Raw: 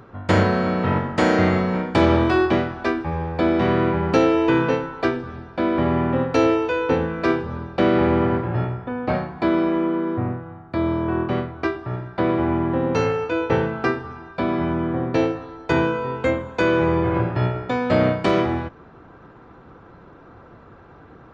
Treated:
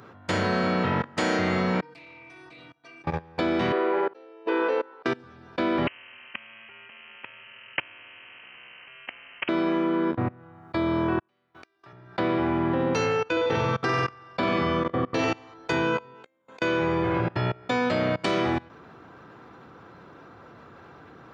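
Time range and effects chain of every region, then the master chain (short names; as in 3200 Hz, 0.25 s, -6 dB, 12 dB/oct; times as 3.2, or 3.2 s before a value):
1.81–3.04 metallic resonator 140 Hz, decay 0.63 s, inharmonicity 0.03 + Doppler distortion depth 0.19 ms
3.72–5.06 elliptic band-pass 410–5200 Hz, stop band 50 dB + auto swell 0.633 s + tilt -3.5 dB/oct
5.87–9.49 compressor 10:1, threshold -23 dBFS + inverted band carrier 2900 Hz + spectral compressor 4:1
11.19–11.93 HPF 58 Hz 24 dB/oct + tilt +2.5 dB/oct + flipped gate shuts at -20 dBFS, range -38 dB
13.32–15.54 notch 2400 Hz, Q 27 + flutter echo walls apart 8 m, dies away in 0.96 s
16.14–16.62 HPF 220 Hz + flipped gate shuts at -18 dBFS, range -32 dB
whole clip: high shelf 2100 Hz +9.5 dB; level quantiser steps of 24 dB; HPF 99 Hz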